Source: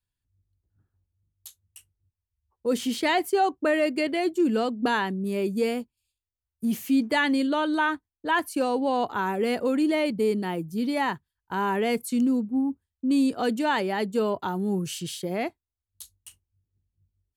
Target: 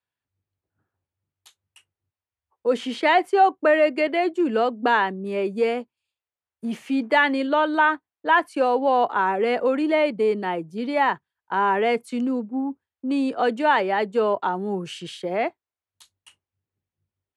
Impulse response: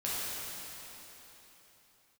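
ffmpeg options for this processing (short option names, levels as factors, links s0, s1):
-filter_complex "[0:a]highpass=140,acrossover=split=690[s0][s1];[s0]acontrast=21[s2];[s2][s1]amix=inputs=2:normalize=0,lowpass=f=10000:w=0.5412,lowpass=f=10000:w=1.3066,acrossover=split=510 3100:gain=0.2 1 0.178[s3][s4][s5];[s3][s4][s5]amix=inputs=3:normalize=0,volume=2"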